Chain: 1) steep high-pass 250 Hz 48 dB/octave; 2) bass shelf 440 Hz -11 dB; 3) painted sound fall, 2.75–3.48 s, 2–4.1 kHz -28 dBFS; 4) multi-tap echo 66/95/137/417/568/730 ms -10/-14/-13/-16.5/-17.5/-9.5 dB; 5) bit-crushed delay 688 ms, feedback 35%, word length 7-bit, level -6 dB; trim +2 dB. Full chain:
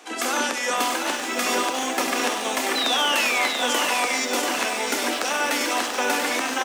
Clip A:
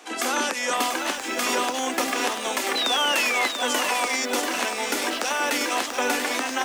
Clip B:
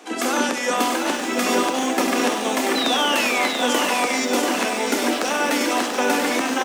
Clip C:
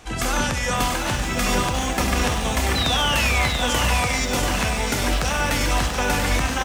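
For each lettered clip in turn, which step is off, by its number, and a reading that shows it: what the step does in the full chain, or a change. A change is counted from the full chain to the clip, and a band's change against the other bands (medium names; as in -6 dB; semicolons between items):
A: 4, loudness change -1.0 LU; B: 2, 250 Hz band +7.5 dB; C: 1, 250 Hz band +3.5 dB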